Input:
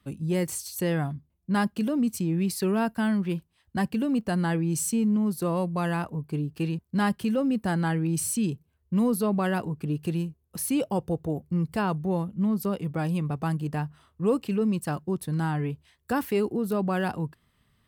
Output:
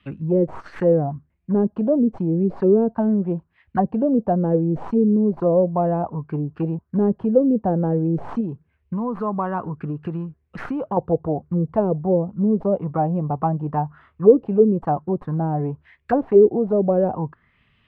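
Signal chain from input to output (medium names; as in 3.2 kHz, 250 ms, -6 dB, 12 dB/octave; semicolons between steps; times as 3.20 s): tracing distortion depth 0.092 ms; 8.40–10.97 s: compression, threshold -27 dBFS, peak gain reduction 7 dB; touch-sensitive low-pass 430–2800 Hz down, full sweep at -21 dBFS; trim +3.5 dB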